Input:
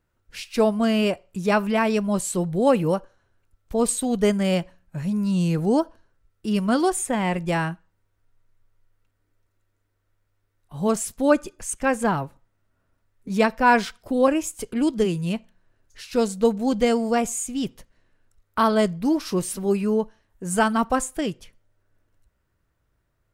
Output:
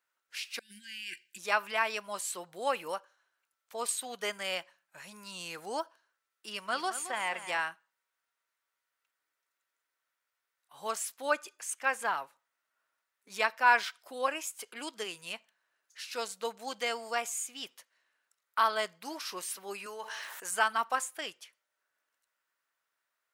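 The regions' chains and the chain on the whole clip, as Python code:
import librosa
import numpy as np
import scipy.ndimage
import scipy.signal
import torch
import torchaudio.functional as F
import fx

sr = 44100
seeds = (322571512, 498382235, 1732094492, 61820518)

y = fx.chain(x, sr, fx.over_compress(threshold_db=-25.0, ratio=-0.5),
    fx.brickwall_bandstop(low_hz=380.0, high_hz=1500.0),
    fx.peak_eq(hz=270.0, db=-13.5, octaves=0.3), at=(0.59, 1.38))
y = fx.chain(y, sr, fx.high_shelf(hz=10000.0, db=-7.0),
    fx.echo_feedback(ms=220, feedback_pct=41, wet_db=-12.0), at=(6.5, 7.62))
y = fx.chain(y, sr, fx.highpass(hz=630.0, slope=6),
    fx.env_flatten(amount_pct=70), at=(19.86, 20.51))
y = fx.dynamic_eq(y, sr, hz=8100.0, q=0.94, threshold_db=-42.0, ratio=4.0, max_db=-6)
y = scipy.signal.sosfilt(scipy.signal.butter(2, 1100.0, 'highpass', fs=sr, output='sos'), y)
y = F.gain(torch.from_numpy(y), -2.0).numpy()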